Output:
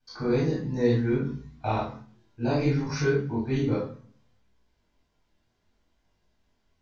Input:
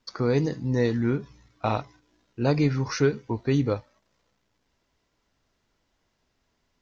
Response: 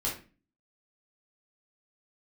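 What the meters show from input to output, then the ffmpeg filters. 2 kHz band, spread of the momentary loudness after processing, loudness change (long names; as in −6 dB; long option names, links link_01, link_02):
−0.5 dB, 9 LU, −1.0 dB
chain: -filter_complex "[1:a]atrim=start_sample=2205,asetrate=33075,aresample=44100[link_01];[0:a][link_01]afir=irnorm=-1:irlink=0,flanger=delay=20:depth=5.1:speed=0.65,volume=-6.5dB"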